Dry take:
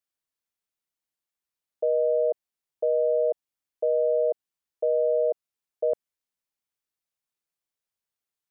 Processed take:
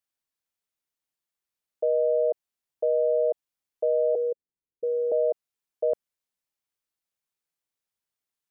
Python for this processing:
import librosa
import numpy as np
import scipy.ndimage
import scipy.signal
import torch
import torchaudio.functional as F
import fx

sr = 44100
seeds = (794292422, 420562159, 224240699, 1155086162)

y = fx.steep_lowpass(x, sr, hz=540.0, slope=96, at=(4.15, 5.12))